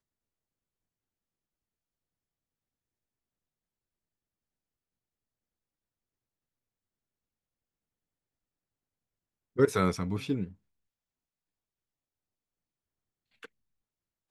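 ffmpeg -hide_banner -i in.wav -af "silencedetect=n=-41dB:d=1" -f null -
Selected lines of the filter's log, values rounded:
silence_start: 0.00
silence_end: 9.57 | silence_duration: 9.57
silence_start: 10.52
silence_end: 13.43 | silence_duration: 2.91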